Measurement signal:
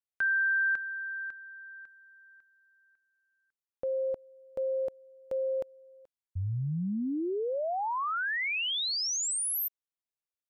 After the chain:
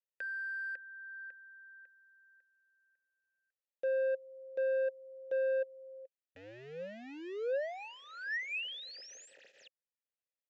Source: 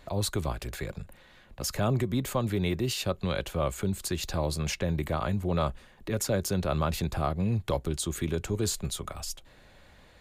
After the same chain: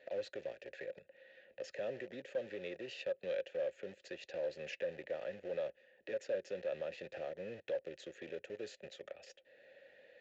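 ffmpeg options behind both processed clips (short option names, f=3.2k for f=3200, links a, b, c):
-filter_complex "[0:a]asplit=2[a][b];[b]acrusher=bits=4:mix=0:aa=0.000001,volume=-6dB[c];[a][c]amix=inputs=2:normalize=0,acompressor=threshold=-35dB:ratio=2:attack=1.1:release=813:detection=peak,asplit=3[d][e][f];[d]bandpass=f=530:t=q:w=8,volume=0dB[g];[e]bandpass=f=1.84k:t=q:w=8,volume=-6dB[h];[f]bandpass=f=2.48k:t=q:w=8,volume=-9dB[i];[g][h][i]amix=inputs=3:normalize=0,asoftclip=type=tanh:threshold=-35dB,aresample=16000,aresample=44100,highpass=f=160:p=1,volume=6.5dB"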